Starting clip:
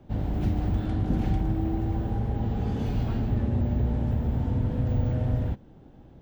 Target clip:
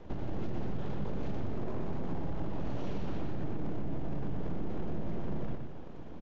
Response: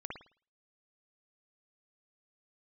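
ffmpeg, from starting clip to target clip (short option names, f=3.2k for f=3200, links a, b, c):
-af "alimiter=limit=-22dB:level=0:latency=1:release=13,acompressor=threshold=-36dB:ratio=12,aresample=16000,aeval=exprs='abs(val(0))':c=same,aresample=44100,asetrate=41625,aresample=44100,atempo=1.05946,aecho=1:1:122.4|271.1:0.562|0.316,volume=5dB"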